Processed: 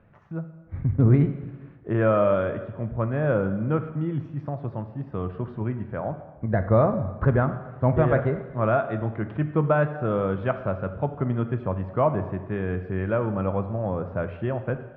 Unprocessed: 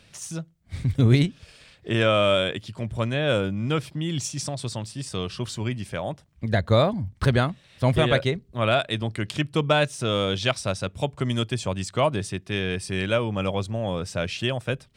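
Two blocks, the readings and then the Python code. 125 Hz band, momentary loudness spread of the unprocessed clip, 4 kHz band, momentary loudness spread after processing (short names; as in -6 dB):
+0.5 dB, 11 LU, under -25 dB, 12 LU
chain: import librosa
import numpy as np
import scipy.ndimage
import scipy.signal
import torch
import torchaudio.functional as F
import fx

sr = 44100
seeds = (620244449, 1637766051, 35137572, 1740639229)

y = scipy.signal.sosfilt(scipy.signal.butter(4, 1500.0, 'lowpass', fs=sr, output='sos'), x)
y = fx.rev_plate(y, sr, seeds[0], rt60_s=1.2, hf_ratio=1.0, predelay_ms=0, drr_db=8.0)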